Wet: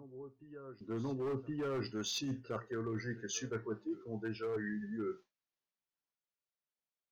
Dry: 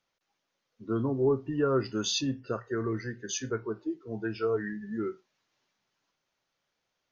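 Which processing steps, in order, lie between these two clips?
noise gate with hold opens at −45 dBFS
backwards echo 1,069 ms −24 dB
hard clipping −24.5 dBFS, distortion −13 dB
reversed playback
downward compressor, threshold −36 dBFS, peak gain reduction 9.5 dB
reversed playback

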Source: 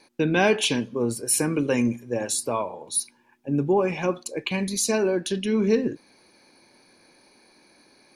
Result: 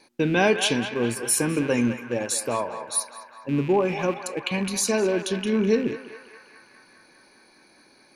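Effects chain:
loose part that buzzes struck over −35 dBFS, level −30 dBFS
feedback echo with a band-pass in the loop 205 ms, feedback 79%, band-pass 1,400 Hz, level −8 dB

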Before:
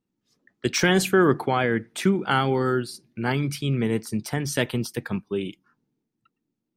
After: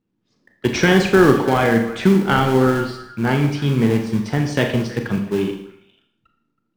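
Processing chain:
high-frequency loss of the air 140 metres
echo through a band-pass that steps 161 ms, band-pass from 590 Hz, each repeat 1.4 octaves, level −11 dB
in parallel at −11 dB: sample-rate reduction 1,300 Hz, jitter 20%
on the sum: four-comb reverb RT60 0.64 s, combs from 27 ms, DRR 4 dB
level +4.5 dB

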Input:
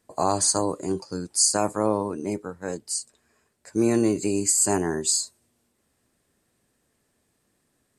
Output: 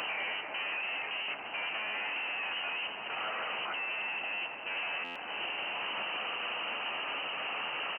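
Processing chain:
sign of each sample alone
double-tracking delay 14 ms −12 dB
echo with a time of its own for lows and highs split 360 Hz, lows 339 ms, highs 137 ms, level −11.5 dB
voice inversion scrambler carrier 3,000 Hz
high-pass filter 210 Hz 12 dB per octave
parametric band 780 Hz +9.5 dB 1.2 octaves
brickwall limiter −21 dBFS, peak gain reduction 5 dB
buffer that repeats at 0:05.04, samples 512, times 9
level −7 dB

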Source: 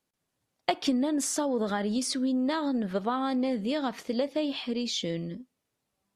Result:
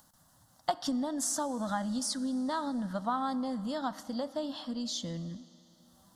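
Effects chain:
phaser with its sweep stopped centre 1,000 Hz, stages 4
upward compression, threshold −47 dBFS
four-comb reverb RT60 3.8 s, combs from 29 ms, DRR 17.5 dB

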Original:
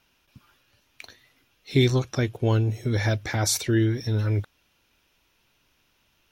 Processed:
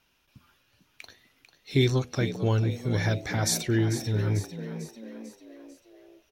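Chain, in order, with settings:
hum removal 82.48 Hz, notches 10
echo with shifted repeats 445 ms, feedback 51%, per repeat +58 Hz, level −11.5 dB
level −2.5 dB

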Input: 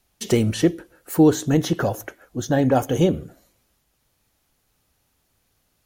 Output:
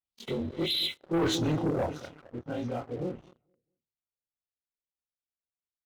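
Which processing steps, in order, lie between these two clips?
every overlapping window played backwards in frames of 63 ms
source passing by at 0:01.31, 16 m/s, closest 1.3 metres
on a send: repeating echo 218 ms, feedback 36%, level −16.5 dB
on the sum: healed spectral selection 0:00.31–0:01.23, 2,000–4,100 Hz after
Butterworth band-reject 1,700 Hz, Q 5.4
reversed playback
downward compressor 8 to 1, threshold −31 dBFS, peak gain reduction 12.5 dB
reversed playback
auto-filter low-pass sine 1.6 Hz 510–4,800 Hz
leveller curve on the samples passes 3

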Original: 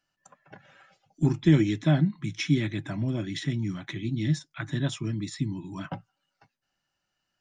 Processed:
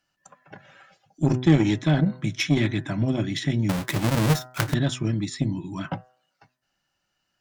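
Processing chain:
0:03.69–0:04.74: each half-wave held at its own peak
harmonic generator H 3 −19 dB, 7 −28 dB, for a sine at −8.5 dBFS
hum removal 126.4 Hz, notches 15
in parallel at +2 dB: compressor whose output falls as the input rises −33 dBFS, ratio −1
on the sum: level +3 dB

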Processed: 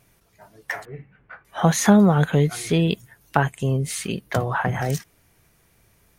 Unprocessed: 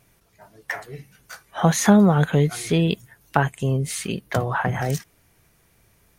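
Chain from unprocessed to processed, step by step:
0:00.85–0:01.45: inverse Chebyshev low-pass filter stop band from 7,000 Hz, stop band 60 dB

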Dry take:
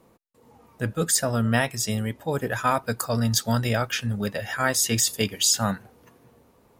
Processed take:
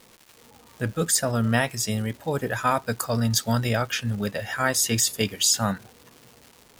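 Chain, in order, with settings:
surface crackle 430 per second −38 dBFS

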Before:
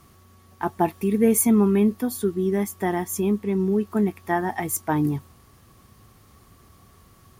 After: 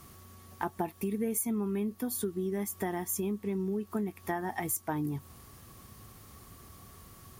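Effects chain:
high-shelf EQ 7,000 Hz +6.5 dB
downward compressor 5 to 1, threshold −31 dBFS, peak gain reduction 17 dB

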